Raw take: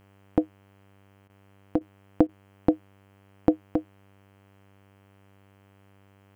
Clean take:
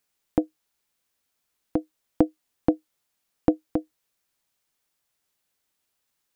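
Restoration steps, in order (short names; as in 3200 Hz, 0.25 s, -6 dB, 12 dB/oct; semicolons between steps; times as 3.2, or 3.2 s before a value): de-hum 98.4 Hz, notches 33; interpolate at 1.28/1.79/2.27, 16 ms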